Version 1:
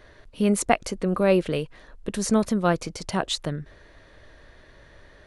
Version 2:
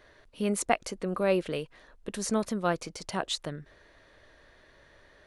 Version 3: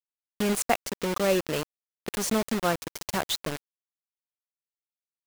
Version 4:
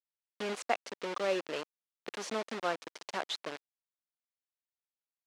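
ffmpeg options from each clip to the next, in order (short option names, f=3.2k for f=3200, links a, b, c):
-af "lowshelf=f=220:g=-7.5,volume=-4.5dB"
-filter_complex "[0:a]asplit=2[a][b];[b]acompressor=threshold=-37dB:ratio=8,volume=-0.5dB[c];[a][c]amix=inputs=2:normalize=0,acrusher=bits=4:mix=0:aa=0.000001"
-af "highpass=370,lowpass=4.7k,volume=-6dB"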